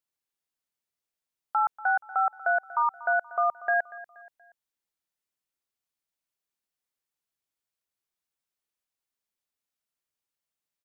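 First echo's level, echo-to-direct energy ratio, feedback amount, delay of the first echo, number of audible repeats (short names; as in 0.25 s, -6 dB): -18.0 dB, -17.0 dB, 41%, 0.238 s, 3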